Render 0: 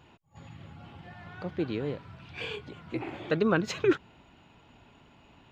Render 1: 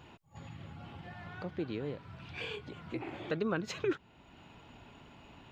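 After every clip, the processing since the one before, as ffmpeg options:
ffmpeg -i in.wav -af "acompressor=threshold=-51dB:ratio=1.5,volume=2.5dB" out.wav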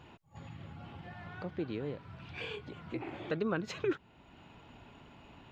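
ffmpeg -i in.wav -af "highshelf=frequency=5000:gain=-5.5" out.wav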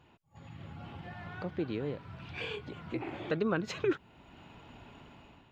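ffmpeg -i in.wav -af "dynaudnorm=framelen=200:gausssize=5:maxgain=10dB,volume=-7.5dB" out.wav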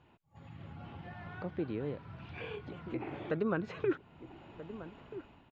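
ffmpeg -i in.wav -filter_complex "[0:a]acrossover=split=2500[link_01][link_02];[link_02]acompressor=threshold=-53dB:ratio=4:attack=1:release=60[link_03];[link_01][link_03]amix=inputs=2:normalize=0,aemphasis=mode=reproduction:type=50fm,asplit=2[link_04][link_05];[link_05]adelay=1283,volume=-13dB,highshelf=frequency=4000:gain=-28.9[link_06];[link_04][link_06]amix=inputs=2:normalize=0,volume=-2dB" out.wav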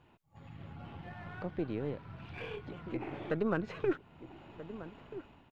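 ffmpeg -i in.wav -af "aeval=exprs='if(lt(val(0),0),0.708*val(0),val(0))':channel_layout=same,volume=1.5dB" out.wav

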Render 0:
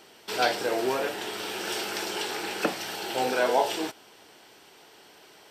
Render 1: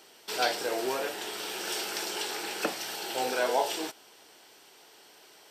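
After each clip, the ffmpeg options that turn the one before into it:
ffmpeg -i in.wav -af "bass=frequency=250:gain=-6,treble=frequency=4000:gain=5,volume=-3.5dB" out.wav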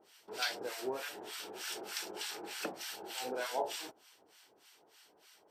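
ffmpeg -i in.wav -filter_complex "[0:a]acrossover=split=1000[link_01][link_02];[link_01]aeval=exprs='val(0)*(1-1/2+1/2*cos(2*PI*3.3*n/s))':channel_layout=same[link_03];[link_02]aeval=exprs='val(0)*(1-1/2-1/2*cos(2*PI*3.3*n/s))':channel_layout=same[link_04];[link_03][link_04]amix=inputs=2:normalize=0,volume=-4dB" out.wav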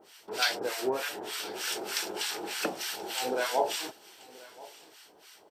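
ffmpeg -i in.wav -af "aecho=1:1:1030:0.0891,volume=8dB" out.wav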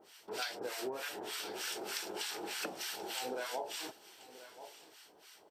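ffmpeg -i in.wav -af "acompressor=threshold=-32dB:ratio=6,volume=-4dB" out.wav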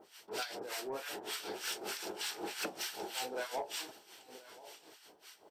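ffmpeg -i in.wav -af "aeval=exprs='0.0668*(cos(1*acos(clip(val(0)/0.0668,-1,1)))-cos(1*PI/2))+0.00188*(cos(5*acos(clip(val(0)/0.0668,-1,1)))-cos(5*PI/2))':channel_layout=same,tremolo=f=5.3:d=0.68,asoftclip=type=tanh:threshold=-30dB,volume=2.5dB" out.wav

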